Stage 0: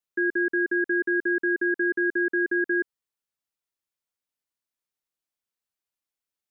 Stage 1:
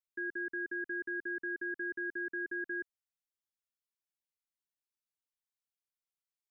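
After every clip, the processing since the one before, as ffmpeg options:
ffmpeg -i in.wav -af "equalizer=frequency=500:width=0.42:gain=-8.5,volume=-8.5dB" out.wav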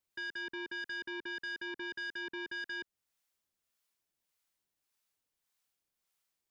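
ffmpeg -i in.wav -filter_complex "[0:a]acrossover=split=580[link_01][link_02];[link_01]aeval=exprs='val(0)*(1-0.5/2+0.5/2*cos(2*PI*1.7*n/s))':channel_layout=same[link_03];[link_02]aeval=exprs='val(0)*(1-0.5/2-0.5/2*cos(2*PI*1.7*n/s))':channel_layout=same[link_04];[link_03][link_04]amix=inputs=2:normalize=0,alimiter=level_in=16.5dB:limit=-24dB:level=0:latency=1:release=184,volume=-16.5dB,aeval=exprs='0.01*sin(PI/2*1.78*val(0)/0.01)':channel_layout=same,volume=3dB" out.wav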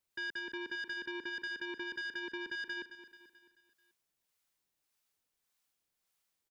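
ffmpeg -i in.wav -af "aecho=1:1:218|436|654|872|1090:0.266|0.133|0.0665|0.0333|0.0166,volume=1dB" out.wav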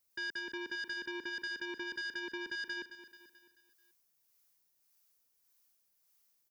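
ffmpeg -i in.wav -af "aexciter=amount=2.5:drive=2.8:freq=4800" out.wav

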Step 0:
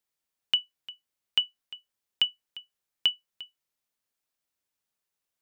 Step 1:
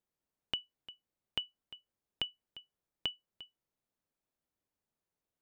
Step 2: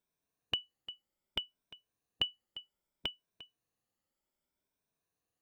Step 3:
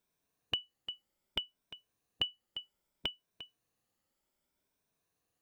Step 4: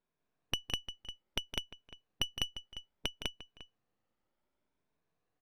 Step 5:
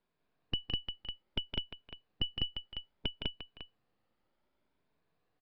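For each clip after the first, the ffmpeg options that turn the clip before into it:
ffmpeg -i in.wav -af "acompressor=threshold=-23dB:ratio=6,tiltshelf=frequency=1100:gain=8,volume=-2.5dB" out.wav
ffmpeg -i in.wav -af "afftfilt=real='re*pow(10,9/40*sin(2*PI*(1.6*log(max(b,1)*sr/1024/100)/log(2)-(0.64)*(pts-256)/sr)))':imag='im*pow(10,9/40*sin(2*PI*(1.6*log(max(b,1)*sr/1024/100)/log(2)-(0.64)*(pts-256)/sr)))':win_size=1024:overlap=0.75,volume=1dB" out.wav
ffmpeg -i in.wav -af "alimiter=limit=-20.5dB:level=0:latency=1:release=424,volume=4.5dB" out.wav
ffmpeg -i in.wav -af "aeval=exprs='if(lt(val(0),0),0.251*val(0),val(0))':channel_layout=same,adynamicsmooth=sensitivity=5.5:basefreq=2900,aecho=1:1:163.3|201.2:0.316|0.891,volume=2.5dB" out.wav
ffmpeg -i in.wav -filter_complex "[0:a]acrossover=split=440[link_01][link_02];[link_02]asoftclip=type=tanh:threshold=-33dB[link_03];[link_01][link_03]amix=inputs=2:normalize=0,aresample=11025,aresample=44100,volume=4.5dB" out.wav

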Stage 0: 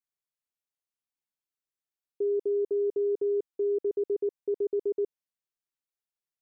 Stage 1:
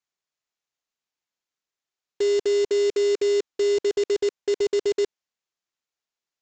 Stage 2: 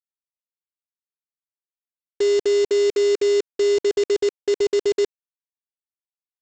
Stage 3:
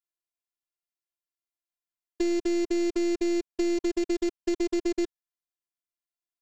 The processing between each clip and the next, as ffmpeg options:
ffmpeg -i in.wav -af "lowshelf=frequency=180:gain=-8.5,acontrast=73,aresample=16000,acrusher=bits=2:mode=log:mix=0:aa=0.000001,aresample=44100" out.wav
ffmpeg -i in.wav -af "aeval=exprs='sgn(val(0))*max(abs(val(0))-0.00141,0)':channel_layout=same,volume=3dB" out.wav
ffmpeg -i in.wav -filter_complex "[0:a]aeval=exprs='0.211*(cos(1*acos(clip(val(0)/0.211,-1,1)))-cos(1*PI/2))+0.0376*(cos(2*acos(clip(val(0)/0.211,-1,1)))-cos(2*PI/2))+0.00376*(cos(5*acos(clip(val(0)/0.211,-1,1)))-cos(5*PI/2))+0.00668*(cos(6*acos(clip(val(0)/0.211,-1,1)))-cos(6*PI/2))+0.00531*(cos(8*acos(clip(val(0)/0.211,-1,1)))-cos(8*PI/2))':channel_layout=same,acrossover=split=2600|5800[link_01][link_02][link_03];[link_01]acompressor=threshold=-21dB:ratio=4[link_04];[link_02]acompressor=threshold=-42dB:ratio=4[link_05];[link_03]acompressor=threshold=-46dB:ratio=4[link_06];[link_04][link_05][link_06]amix=inputs=3:normalize=0,afftfilt=real='hypot(re,im)*cos(PI*b)':imag='0':win_size=512:overlap=0.75" out.wav

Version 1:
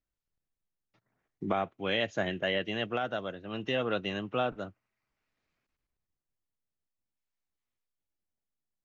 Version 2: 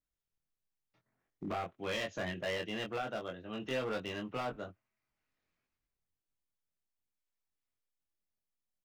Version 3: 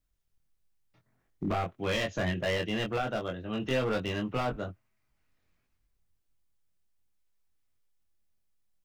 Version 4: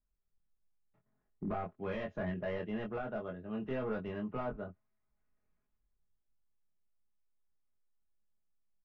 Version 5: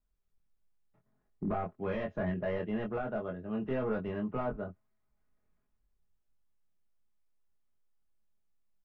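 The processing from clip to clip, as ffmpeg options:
ffmpeg -i in.wav -filter_complex "[0:a]asoftclip=type=hard:threshold=-27.5dB,asplit=2[link_01][link_02];[link_02]adelay=23,volume=-3.5dB[link_03];[link_01][link_03]amix=inputs=2:normalize=0,volume=-5.5dB" out.wav
ffmpeg -i in.wav -af "lowshelf=frequency=130:gain=12,volume=5.5dB" out.wav
ffmpeg -i in.wav -af "lowpass=1500,aecho=1:1:4.8:0.41,volume=-7dB" out.wav
ffmpeg -i in.wav -af "highshelf=frequency=2900:gain=-7.5,volume=4dB" out.wav

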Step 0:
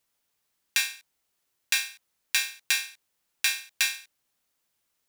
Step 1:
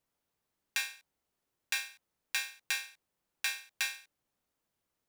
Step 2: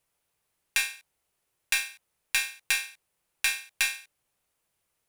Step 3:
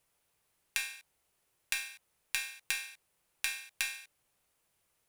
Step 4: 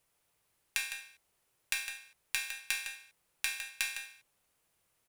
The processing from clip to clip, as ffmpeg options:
ffmpeg -i in.wav -af "tiltshelf=frequency=1300:gain=6,volume=-4.5dB" out.wav
ffmpeg -i in.wav -af "aeval=exprs='0.237*(cos(1*acos(clip(val(0)/0.237,-1,1)))-cos(1*PI/2))+0.0075*(cos(8*acos(clip(val(0)/0.237,-1,1)))-cos(8*PI/2))':channel_layout=same,equalizer=frequency=250:width_type=o:width=0.67:gain=-8,equalizer=frequency=2500:width_type=o:width=0.67:gain=4,equalizer=frequency=10000:width_type=o:width=0.67:gain=7,volume=4.5dB" out.wav
ffmpeg -i in.wav -af "acompressor=threshold=-34dB:ratio=4,volume=1.5dB" out.wav
ffmpeg -i in.wav -filter_complex "[0:a]asplit=2[link_01][link_02];[link_02]adelay=157.4,volume=-8dB,highshelf=frequency=4000:gain=-3.54[link_03];[link_01][link_03]amix=inputs=2:normalize=0" out.wav

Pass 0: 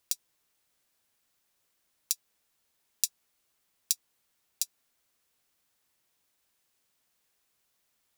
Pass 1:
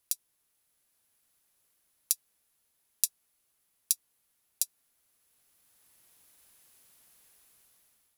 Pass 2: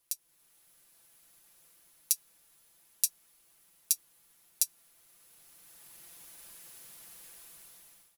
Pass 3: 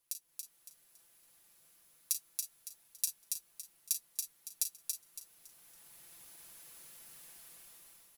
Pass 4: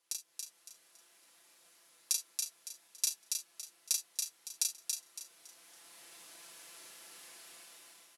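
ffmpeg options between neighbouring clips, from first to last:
ffmpeg -i in.wav -af "lowshelf=frequency=140:gain=3.5,dynaudnorm=framelen=400:gausssize=5:maxgain=14dB,equalizer=frequency=11000:width_type=o:width=0.39:gain=11,volume=-4dB" out.wav
ffmpeg -i in.wav -af "alimiter=limit=-12dB:level=0:latency=1:release=61,aecho=1:1:5.9:0.65,dynaudnorm=framelen=200:gausssize=3:maxgain=9dB" out.wav
ffmpeg -i in.wav -filter_complex "[0:a]asplit=2[link_01][link_02];[link_02]aecho=0:1:37|51:0.299|0.178[link_03];[link_01][link_03]amix=inputs=2:normalize=0,asoftclip=type=tanh:threshold=-6.5dB,asplit=2[link_04][link_05];[link_05]aecho=0:1:280|560|840|1120:0.631|0.196|0.0606|0.0188[link_06];[link_04][link_06]amix=inputs=2:normalize=0,volume=-5dB" out.wav
ffmpeg -i in.wav -filter_complex "[0:a]acrusher=bits=6:mode=log:mix=0:aa=0.000001,highpass=290,lowpass=7900,asplit=2[link_01][link_02];[link_02]adelay=34,volume=-4dB[link_03];[link_01][link_03]amix=inputs=2:normalize=0,volume=5.5dB" out.wav

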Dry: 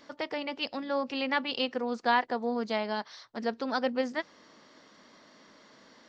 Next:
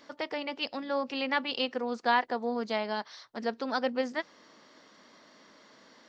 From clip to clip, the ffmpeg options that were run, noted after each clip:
ffmpeg -i in.wav -af "lowshelf=frequency=140:gain=-6.5" out.wav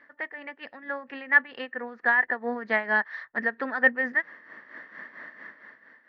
ffmpeg -i in.wav -af "lowpass=frequency=1800:width_type=q:width=13,tremolo=f=4.4:d=0.66,dynaudnorm=framelen=110:gausssize=13:maxgain=14.5dB,volume=-6.5dB" out.wav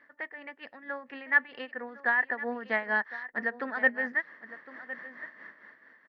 ffmpeg -i in.wav -af "aecho=1:1:1059:0.168,volume=-4dB" out.wav

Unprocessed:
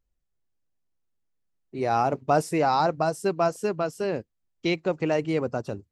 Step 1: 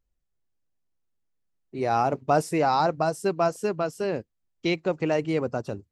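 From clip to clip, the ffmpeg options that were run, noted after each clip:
ffmpeg -i in.wav -af anull out.wav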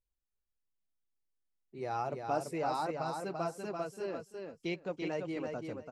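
ffmpeg -i in.wav -af "flanger=delay=1.8:depth=4.8:regen=-46:speed=0.77:shape=triangular,aecho=1:1:338|676|1014:0.562|0.101|0.0182,volume=-8.5dB" out.wav

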